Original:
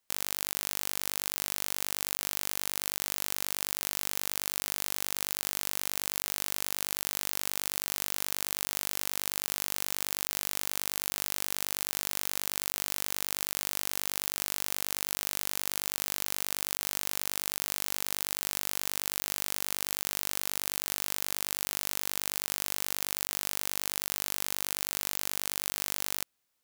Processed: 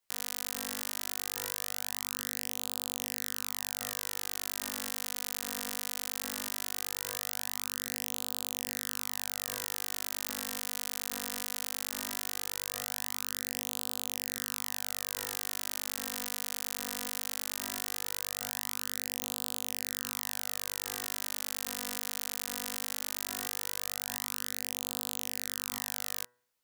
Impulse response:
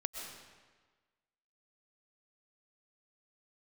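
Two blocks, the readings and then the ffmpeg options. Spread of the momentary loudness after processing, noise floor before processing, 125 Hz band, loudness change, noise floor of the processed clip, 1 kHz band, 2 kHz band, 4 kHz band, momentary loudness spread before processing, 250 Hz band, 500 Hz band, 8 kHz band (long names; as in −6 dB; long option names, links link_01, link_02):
0 LU, −34 dBFS, −2.5 dB, −3.5 dB, −38 dBFS, −3.5 dB, −3.0 dB, −3.0 dB, 0 LU, −3.0 dB, −3.0 dB, −3.0 dB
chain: -af "flanger=delay=16:depth=4:speed=0.18,bandreject=frequency=122.5:width_type=h:width=4,bandreject=frequency=245:width_type=h:width=4,bandreject=frequency=367.5:width_type=h:width=4,bandreject=frequency=490:width_type=h:width=4,bandreject=frequency=612.5:width_type=h:width=4,bandreject=frequency=735:width_type=h:width=4,bandreject=frequency=857.5:width_type=h:width=4,bandreject=frequency=980:width_type=h:width=4,bandreject=frequency=1102.5:width_type=h:width=4,bandreject=frequency=1225:width_type=h:width=4,bandreject=frequency=1347.5:width_type=h:width=4,bandreject=frequency=1470:width_type=h:width=4,bandreject=frequency=1592.5:width_type=h:width=4,bandreject=frequency=1715:width_type=h:width=4,bandreject=frequency=1837.5:width_type=h:width=4,bandreject=frequency=1960:width_type=h:width=4"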